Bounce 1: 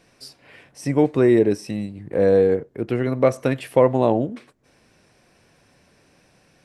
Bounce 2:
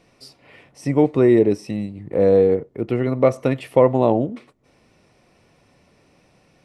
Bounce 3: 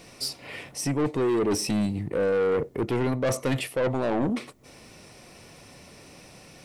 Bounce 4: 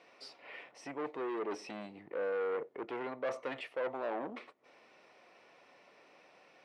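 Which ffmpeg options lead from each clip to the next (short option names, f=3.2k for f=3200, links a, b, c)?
-af "highshelf=f=4.5k:g=-7.5,bandreject=f=1.6k:w=5.6,volume=1.5dB"
-af "highshelf=f=4.4k:g=12,areverse,acompressor=threshold=-21dB:ratio=16,areverse,asoftclip=type=tanh:threshold=-27.5dB,volume=7dB"
-af "highpass=510,lowpass=2.5k,volume=-7.5dB"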